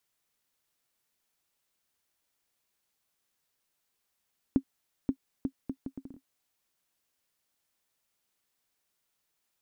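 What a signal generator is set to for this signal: bouncing ball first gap 0.53 s, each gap 0.68, 268 Hz, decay 75 ms -13.5 dBFS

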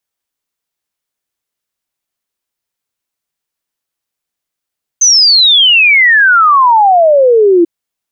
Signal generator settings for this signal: log sweep 6300 Hz -> 330 Hz 2.64 s -3.5 dBFS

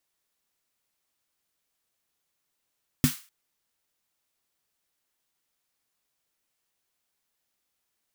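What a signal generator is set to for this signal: snare drum length 0.25 s, tones 150 Hz, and 250 Hz, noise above 1200 Hz, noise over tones -9 dB, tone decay 0.12 s, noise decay 0.36 s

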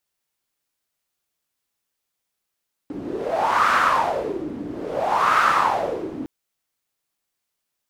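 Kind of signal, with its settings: wind-like swept noise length 3.36 s, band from 280 Hz, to 1300 Hz, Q 5.4, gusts 2, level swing 14 dB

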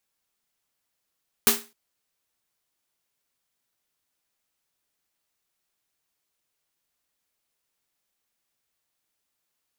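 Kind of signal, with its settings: snare drum length 0.26 s, tones 230 Hz, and 410 Hz, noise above 710 Hz, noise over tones 9 dB, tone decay 0.30 s, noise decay 0.29 s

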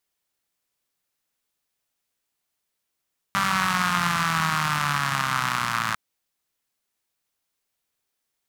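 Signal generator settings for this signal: four-cylinder engine model, changing speed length 2.60 s, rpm 5900, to 3300, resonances 160/1200 Hz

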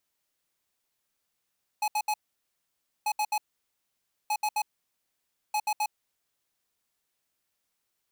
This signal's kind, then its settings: beep pattern square 846 Hz, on 0.06 s, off 0.07 s, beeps 3, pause 0.92 s, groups 4, -27 dBFS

